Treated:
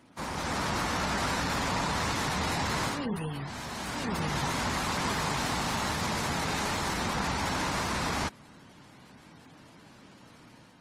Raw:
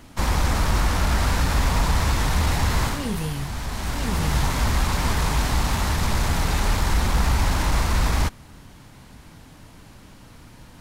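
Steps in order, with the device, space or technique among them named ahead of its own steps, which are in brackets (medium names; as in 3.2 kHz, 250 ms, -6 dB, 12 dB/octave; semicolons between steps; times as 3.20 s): noise-suppressed video call (high-pass 160 Hz 12 dB/octave; spectral gate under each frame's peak -25 dB strong; level rider gain up to 4.5 dB; trim -8 dB; Opus 24 kbps 48 kHz)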